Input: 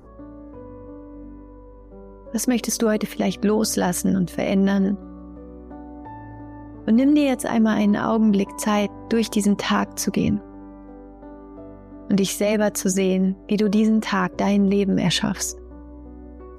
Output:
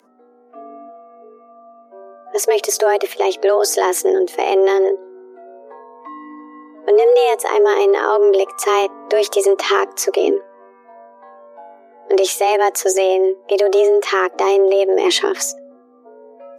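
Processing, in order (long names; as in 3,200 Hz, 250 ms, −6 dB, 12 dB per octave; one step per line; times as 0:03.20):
frequency shifter +190 Hz
noise reduction from a noise print of the clip's start 16 dB
level +5 dB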